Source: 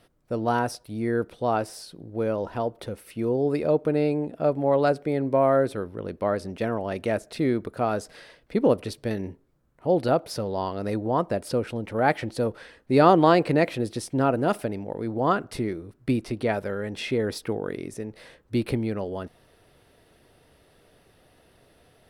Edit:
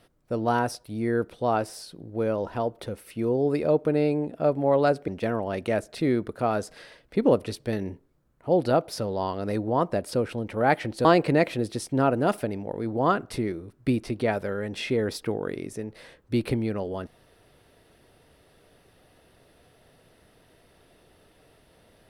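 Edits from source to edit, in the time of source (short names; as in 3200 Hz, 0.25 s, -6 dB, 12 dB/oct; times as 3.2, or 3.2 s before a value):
5.08–6.46 cut
12.43–13.26 cut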